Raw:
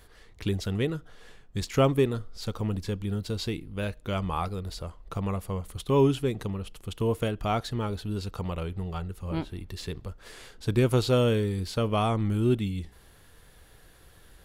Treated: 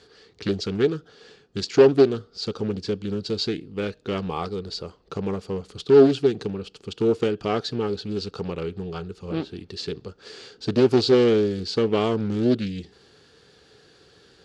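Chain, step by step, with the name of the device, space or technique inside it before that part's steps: full-range speaker at full volume (Doppler distortion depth 0.78 ms; speaker cabinet 150–6900 Hz, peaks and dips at 420 Hz +8 dB, 630 Hz -6 dB, 1000 Hz -7 dB, 2000 Hz -6 dB, 4600 Hz +8 dB); gain +4 dB

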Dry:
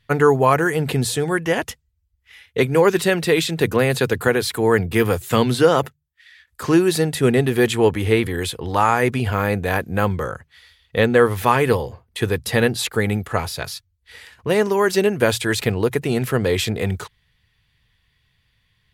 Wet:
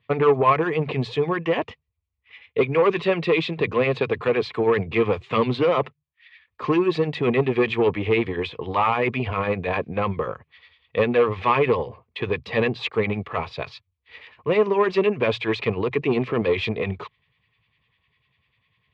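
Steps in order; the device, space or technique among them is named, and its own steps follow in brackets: 15.93–16.42 bell 310 Hz +6 dB 0.89 oct; guitar amplifier with harmonic tremolo (harmonic tremolo 10 Hz, depth 70%, crossover 1200 Hz; soft clip -14.5 dBFS, distortion -13 dB; speaker cabinet 98–3600 Hz, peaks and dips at 430 Hz +4 dB, 610 Hz +3 dB, 1100 Hz +9 dB, 1500 Hz -8 dB, 2400 Hz +7 dB)

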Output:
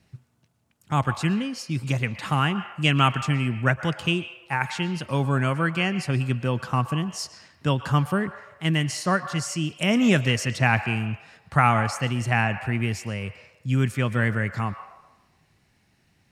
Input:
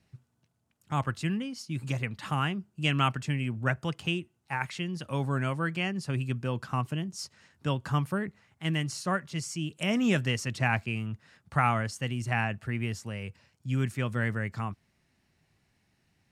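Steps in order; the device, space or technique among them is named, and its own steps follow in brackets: filtered reverb send (on a send: HPF 570 Hz 24 dB/oct + LPF 6400 Hz + reverb RT60 1.2 s, pre-delay 0.109 s, DRR 11 dB); on the sum: gain +6.5 dB

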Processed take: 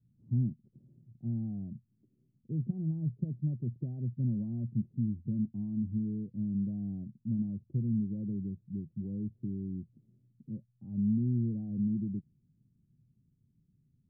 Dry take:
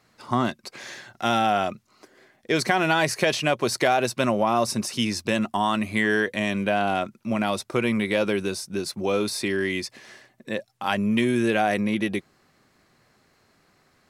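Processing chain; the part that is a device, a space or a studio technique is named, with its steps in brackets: the neighbour's flat through the wall (LPF 210 Hz 24 dB/oct; bell 130 Hz +7 dB 0.65 oct); gain -3.5 dB

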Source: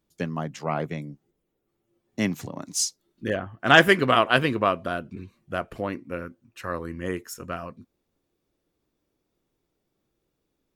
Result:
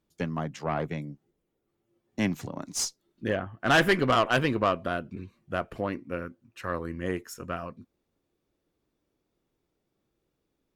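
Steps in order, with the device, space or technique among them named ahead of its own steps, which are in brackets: tube preamp driven hard (tube stage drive 15 dB, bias 0.35; high shelf 5700 Hz -5 dB)

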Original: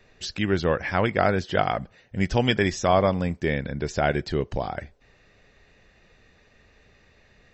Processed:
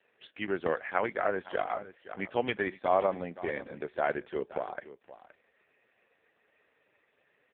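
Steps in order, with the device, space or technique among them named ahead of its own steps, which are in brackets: satellite phone (BPF 360–3000 Hz; echo 0.52 s -16 dB; gain -4 dB; AMR-NB 4.75 kbps 8000 Hz)

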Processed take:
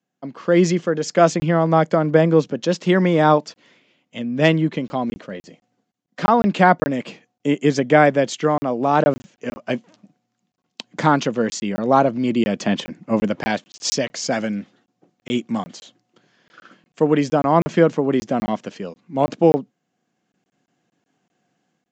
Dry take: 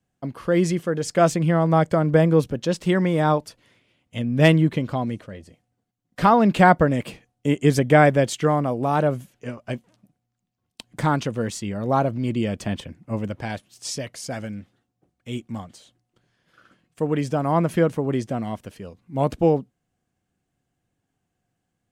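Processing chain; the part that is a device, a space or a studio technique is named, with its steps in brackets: call with lost packets (HPF 170 Hz 24 dB/oct; downsampling 16000 Hz; AGC gain up to 11 dB; packet loss); gain -1 dB

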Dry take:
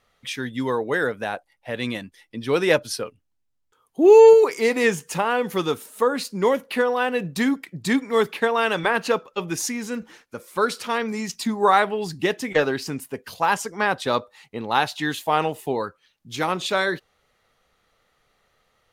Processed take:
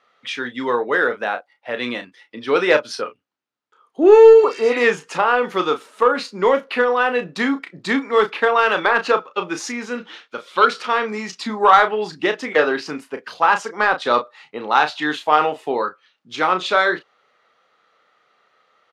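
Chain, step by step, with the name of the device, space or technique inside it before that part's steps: 4.39–4.75 spectral repair 1400–4600 Hz both; intercom (BPF 310–4300 Hz; bell 1300 Hz +6 dB 0.43 oct; soft clip -6 dBFS, distortion -20 dB; doubler 33 ms -8.5 dB); 9.98–10.66 bell 3400 Hz +13.5 dB 0.76 oct; gain +4 dB

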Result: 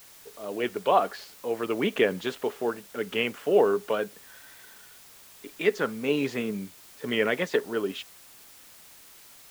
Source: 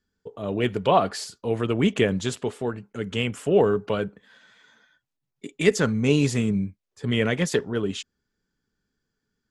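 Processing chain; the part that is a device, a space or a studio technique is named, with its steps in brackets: dictaphone (BPF 350–3000 Hz; AGC gain up to 11.5 dB; wow and flutter; white noise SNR 22 dB); gain -8 dB

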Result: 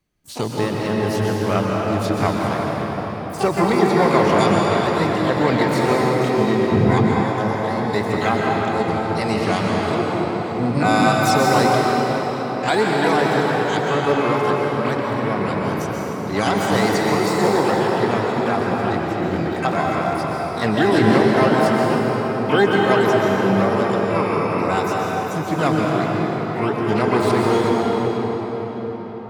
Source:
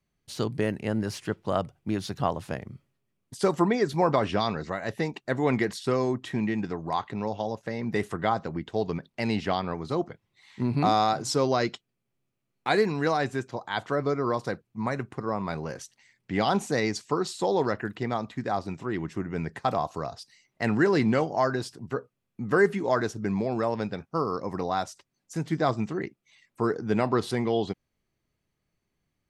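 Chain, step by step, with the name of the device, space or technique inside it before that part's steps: shimmer-style reverb (harmoniser +12 st -7 dB; reverb RT60 5.7 s, pre-delay 0.116 s, DRR -3 dB); 6.72–7.23 low shelf 190 Hz +12 dB; gain +3.5 dB

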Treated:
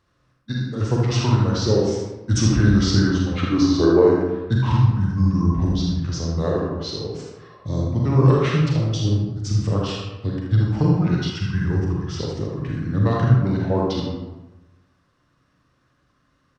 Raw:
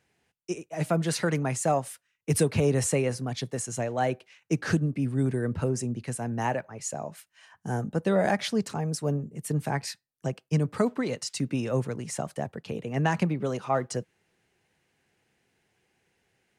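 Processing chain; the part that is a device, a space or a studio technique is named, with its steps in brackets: 3.39–4.02 spectral gain 380–2600 Hz +11 dB; monster voice (pitch shift -6 st; formant shift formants -2.5 st; low shelf 150 Hz +6 dB; echo 78 ms -9 dB; reverb RT60 1.1 s, pre-delay 33 ms, DRR -2 dB); 11.3–12.19 thirty-one-band EQ 250 Hz -10 dB, 630 Hz -9 dB, 1000 Hz +3 dB, 4000 Hz -11 dB; gain +1.5 dB

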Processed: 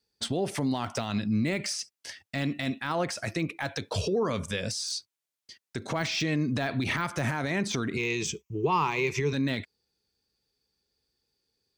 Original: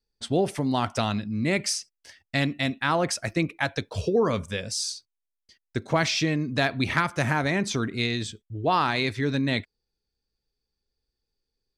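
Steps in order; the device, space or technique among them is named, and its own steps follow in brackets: broadcast voice chain (HPF 87 Hz; de-esser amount 85%; compressor 4:1, threshold -27 dBFS, peak gain reduction 8.5 dB; bell 5600 Hz +3 dB 2.7 oct; limiter -24.5 dBFS, peak gain reduction 10.5 dB); 7.96–9.33 ripple EQ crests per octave 0.76, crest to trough 15 dB; gain +5 dB

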